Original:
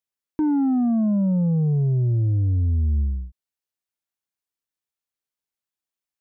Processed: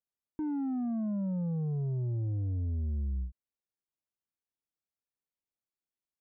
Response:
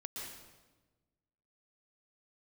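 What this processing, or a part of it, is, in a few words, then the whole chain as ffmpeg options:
soft clipper into limiter: -af "asoftclip=type=tanh:threshold=-19dB,alimiter=level_in=4dB:limit=-24dB:level=0:latency=1:release=71,volume=-4dB,tiltshelf=frequency=1200:gain=7,volume=-9dB"

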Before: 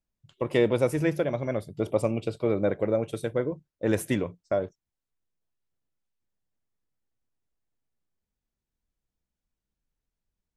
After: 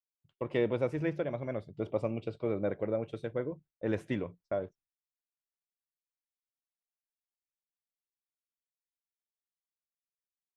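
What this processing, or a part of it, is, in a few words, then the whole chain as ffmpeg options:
hearing-loss simulation: -af "lowpass=3500,agate=range=-33dB:threshold=-49dB:ratio=3:detection=peak,volume=-7dB"

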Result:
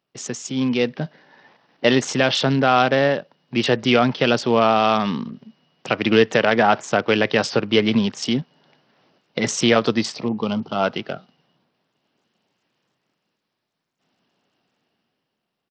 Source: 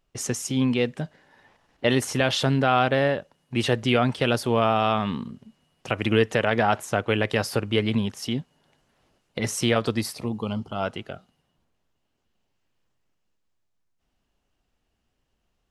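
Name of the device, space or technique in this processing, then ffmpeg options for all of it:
Bluetooth headset: -af "highpass=frequency=140:width=0.5412,highpass=frequency=140:width=1.3066,dynaudnorm=framelen=130:gausssize=13:maxgain=10dB,aresample=16000,aresample=44100,volume=-1dB" -ar 44100 -c:a sbc -b:a 64k

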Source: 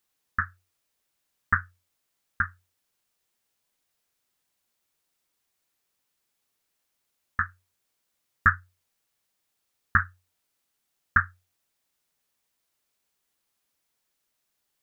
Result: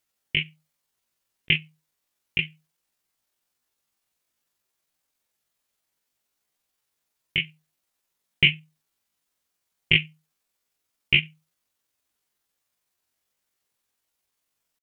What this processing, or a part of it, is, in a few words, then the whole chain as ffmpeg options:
chipmunk voice: -af "asetrate=76340,aresample=44100,atempo=0.577676,volume=2dB"

